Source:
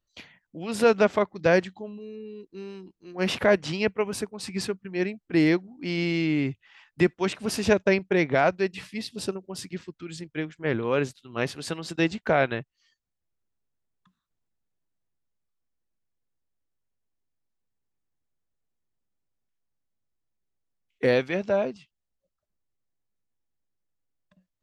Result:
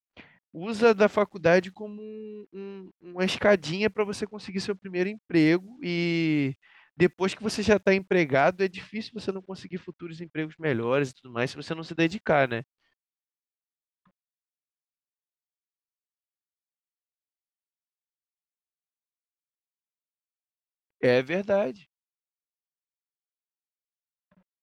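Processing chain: bit crusher 11-bit; level-controlled noise filter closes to 1.8 kHz, open at -20.5 dBFS

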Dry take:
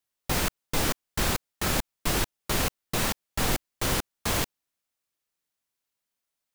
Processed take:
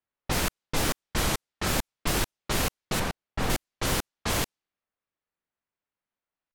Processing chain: level-controlled noise filter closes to 2 kHz, open at -23 dBFS; 3.02–3.50 s: treble shelf 3.8 kHz -11 dB; warped record 33 1/3 rpm, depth 250 cents

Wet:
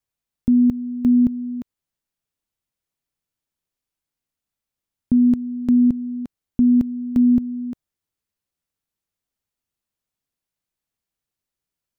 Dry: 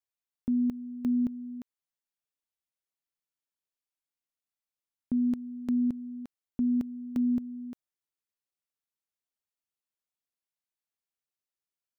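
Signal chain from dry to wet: bass shelf 260 Hz +12 dB; trim +5.5 dB

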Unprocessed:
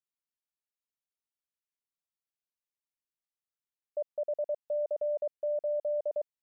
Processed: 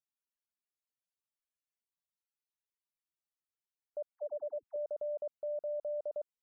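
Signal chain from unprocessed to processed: peak limiter -35.5 dBFS, peak gain reduction 8.5 dB; 4.14–4.76 s: phase dispersion lows, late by 88 ms, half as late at 520 Hz; loudest bins only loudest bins 64; trim +2.5 dB

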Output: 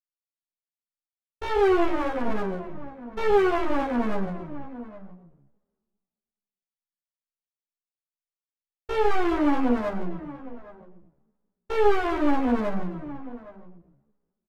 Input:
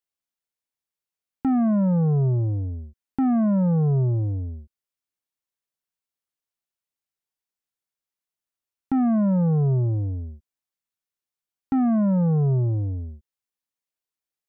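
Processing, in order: low-pass that closes with the level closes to 860 Hz, closed at -21.5 dBFS; gate -24 dBFS, range -24 dB; hum notches 50/100/150/200/250/300/350/400/450 Hz; compression 6:1, threshold -22 dBFS, peak gain reduction 5 dB; Chebyshev shaper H 5 -17 dB, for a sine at -18 dBFS; two-slope reverb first 0.55 s, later 1.8 s, from -25 dB, DRR -9 dB; pitch shift +9.5 st; half-wave rectifier; echo from a far wall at 140 m, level -15 dB; endless flanger 11.4 ms -2.2 Hz

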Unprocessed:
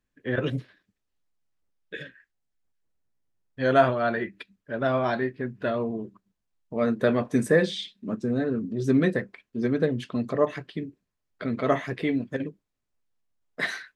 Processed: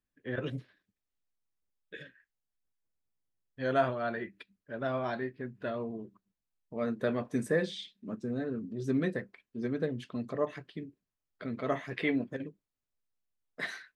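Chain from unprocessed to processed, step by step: 11.91–12.32 s: peaking EQ 2.8 kHz -> 450 Hz +11.5 dB 2.9 oct; trim -8.5 dB

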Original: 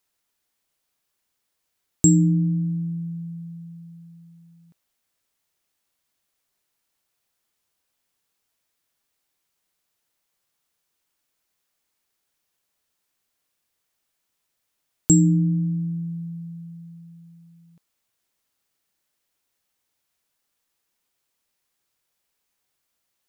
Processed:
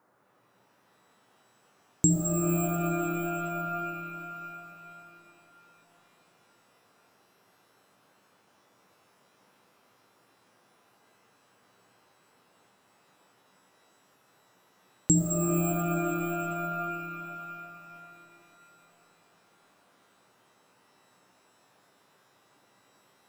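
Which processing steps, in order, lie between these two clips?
band noise 110–1400 Hz -63 dBFS; pitch-shifted reverb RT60 3.5 s, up +12 st, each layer -2 dB, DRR 2.5 dB; trim -6 dB

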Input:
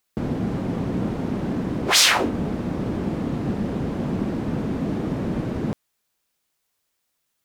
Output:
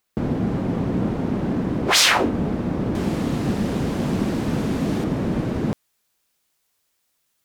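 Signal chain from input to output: peaking EQ 13 kHz -4 dB 2.8 oct, from 2.95 s +10.5 dB, from 5.04 s +2 dB; trim +2.5 dB

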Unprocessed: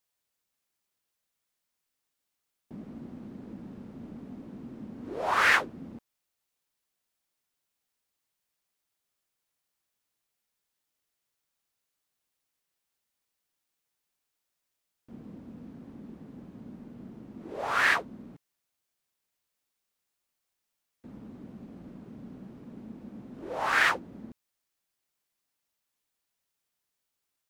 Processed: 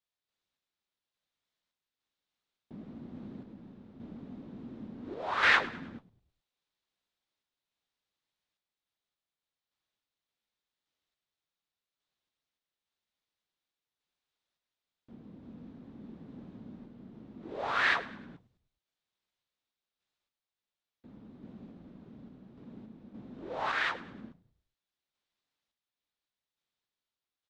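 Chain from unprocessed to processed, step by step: peaking EQ 3.7 kHz +7 dB 0.48 oct; random-step tremolo; distance through air 110 m; frequency-shifting echo 104 ms, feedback 45%, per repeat -54 Hz, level -17.5 dB; trim -1 dB

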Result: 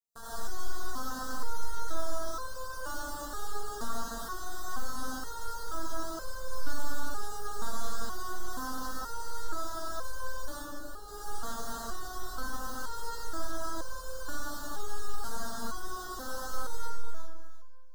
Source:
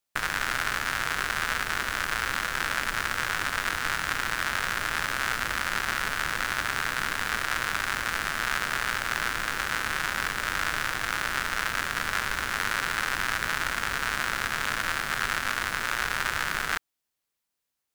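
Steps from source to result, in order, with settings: octave divider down 2 oct, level +4 dB; echo whose repeats swap between lows and highs 173 ms, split 1 kHz, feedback 53%, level -5 dB; 10.54–11.08 s: valve stage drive 30 dB, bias 0.75; Butterworth band-stop 2.3 kHz, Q 0.61; algorithmic reverb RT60 1.4 s, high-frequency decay 0.6×, pre-delay 55 ms, DRR -7.5 dB; resonator arpeggio 2.1 Hz 230–520 Hz; trim +2 dB

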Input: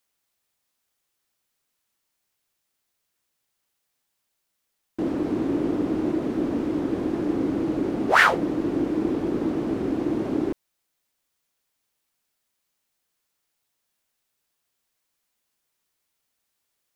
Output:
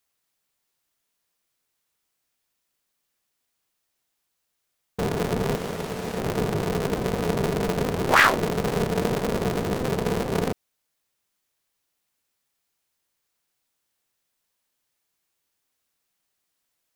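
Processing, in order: 5.55–6.18 s: tilt EQ +4 dB/octave; polarity switched at an audio rate 130 Hz

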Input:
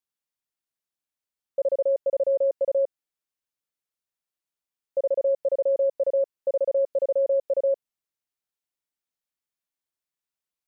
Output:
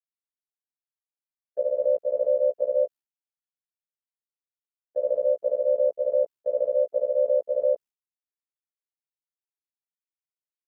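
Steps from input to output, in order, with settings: short-time spectra conjugated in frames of 40 ms; ring modulator 34 Hz; expander -43 dBFS; trim +4 dB

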